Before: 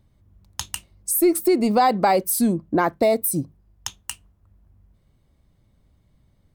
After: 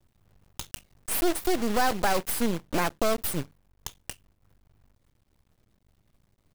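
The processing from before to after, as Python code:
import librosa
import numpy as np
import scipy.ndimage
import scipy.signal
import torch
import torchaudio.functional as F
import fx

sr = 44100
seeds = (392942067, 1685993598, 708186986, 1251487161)

y = fx.block_float(x, sr, bits=3)
y = np.maximum(y, 0.0)
y = F.gain(torch.from_numpy(y), -3.5).numpy()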